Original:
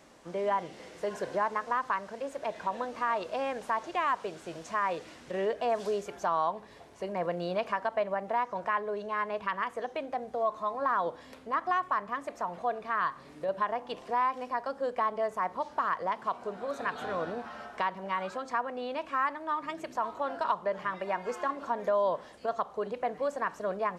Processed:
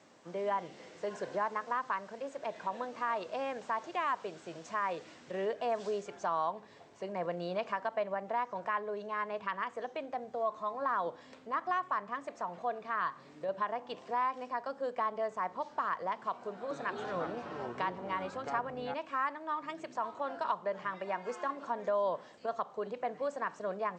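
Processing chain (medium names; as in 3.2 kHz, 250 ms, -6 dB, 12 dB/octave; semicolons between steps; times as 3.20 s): high-pass 94 Hz 24 dB/octave; 16.48–18.94 s: ever faster or slower copies 224 ms, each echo -5 st, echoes 3, each echo -6 dB; steep low-pass 8.3 kHz 96 dB/octave; trim -4 dB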